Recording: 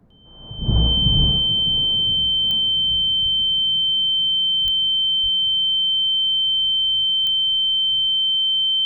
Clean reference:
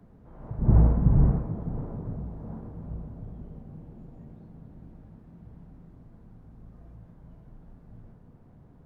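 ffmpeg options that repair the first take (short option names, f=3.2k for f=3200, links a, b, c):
-filter_complex "[0:a]adeclick=t=4,bandreject=f=3.1k:w=30,asplit=3[a][b][c];[a]afade=t=out:st=3.22:d=0.02[d];[b]highpass=f=140:w=0.5412,highpass=f=140:w=1.3066,afade=t=in:st=3.22:d=0.02,afade=t=out:st=3.34:d=0.02[e];[c]afade=t=in:st=3.34:d=0.02[f];[d][e][f]amix=inputs=3:normalize=0,asplit=3[g][h][i];[g]afade=t=out:st=4.63:d=0.02[j];[h]highpass=f=140:w=0.5412,highpass=f=140:w=1.3066,afade=t=in:st=4.63:d=0.02,afade=t=out:st=4.75:d=0.02[k];[i]afade=t=in:st=4.75:d=0.02[l];[j][k][l]amix=inputs=3:normalize=0,asplit=3[m][n][o];[m]afade=t=out:st=5.22:d=0.02[p];[n]highpass=f=140:w=0.5412,highpass=f=140:w=1.3066,afade=t=in:st=5.22:d=0.02,afade=t=out:st=5.34:d=0.02[q];[o]afade=t=in:st=5.34:d=0.02[r];[p][q][r]amix=inputs=3:normalize=0"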